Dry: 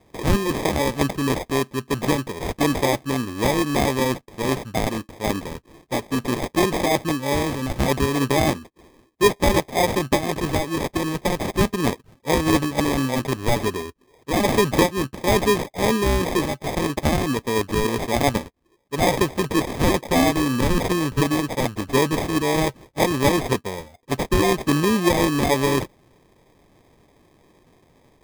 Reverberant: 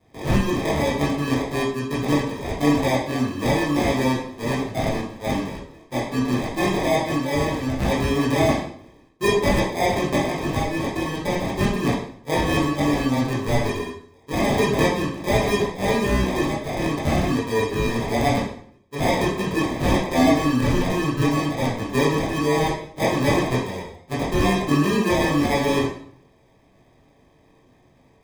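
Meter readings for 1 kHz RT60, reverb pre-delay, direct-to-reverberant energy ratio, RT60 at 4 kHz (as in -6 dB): 0.60 s, 12 ms, -8.0 dB, 0.50 s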